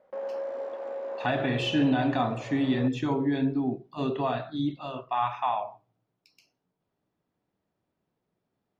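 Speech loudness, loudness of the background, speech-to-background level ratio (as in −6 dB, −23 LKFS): −28.5 LKFS, −37.5 LKFS, 9.0 dB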